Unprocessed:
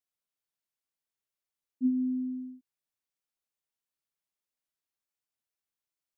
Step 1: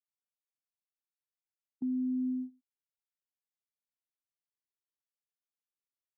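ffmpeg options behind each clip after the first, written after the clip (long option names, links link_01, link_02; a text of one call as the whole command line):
ffmpeg -i in.wav -filter_complex "[0:a]acrossover=split=210[link_01][link_02];[link_01]acompressor=threshold=-48dB:ratio=6[link_03];[link_03][link_02]amix=inputs=2:normalize=0,agate=range=-20dB:threshold=-40dB:ratio=16:detection=peak,alimiter=level_in=8dB:limit=-24dB:level=0:latency=1,volume=-8dB,volume=3.5dB" out.wav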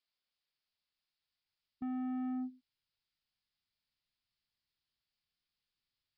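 ffmpeg -i in.wav -af "crystalizer=i=5.5:c=0,aresample=11025,asoftclip=type=tanh:threshold=-39.5dB,aresample=44100,asubboost=boost=5.5:cutoff=190,volume=2dB" out.wav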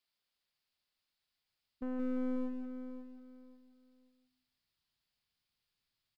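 ffmpeg -i in.wav -filter_complex "[0:a]asplit=2[link_01][link_02];[link_02]adelay=173,lowpass=frequency=1100:poles=1,volume=-5dB,asplit=2[link_03][link_04];[link_04]adelay=173,lowpass=frequency=1100:poles=1,volume=0.21,asplit=2[link_05][link_06];[link_06]adelay=173,lowpass=frequency=1100:poles=1,volume=0.21[link_07];[link_03][link_05][link_07]amix=inputs=3:normalize=0[link_08];[link_01][link_08]amix=inputs=2:normalize=0,aeval=exprs='clip(val(0),-1,0.00447)':channel_layout=same,asplit=2[link_09][link_10];[link_10]aecho=0:1:539|1078|1617:0.299|0.0776|0.0202[link_11];[link_09][link_11]amix=inputs=2:normalize=0,volume=2.5dB" out.wav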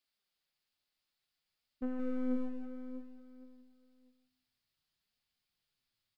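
ffmpeg -i in.wav -af "bandreject=frequency=1000:width=19,flanger=delay=3.2:depth=7.3:regen=65:speed=0.57:shape=triangular,volume=4dB" out.wav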